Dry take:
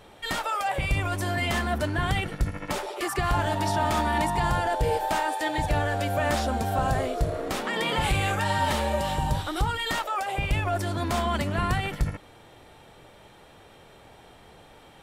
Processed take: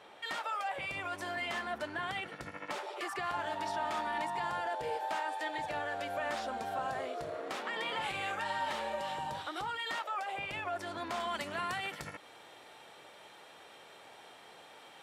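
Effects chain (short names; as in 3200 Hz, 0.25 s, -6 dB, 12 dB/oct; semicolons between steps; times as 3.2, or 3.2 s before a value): weighting filter A; compressor 1.5:1, threshold -43 dBFS, peak gain reduction 7.5 dB; high shelf 4600 Hz -8 dB, from 11.2 s +2 dB; gain -1.5 dB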